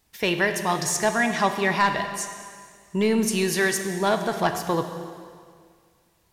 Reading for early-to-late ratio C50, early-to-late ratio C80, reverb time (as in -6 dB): 8.0 dB, 8.5 dB, 2.0 s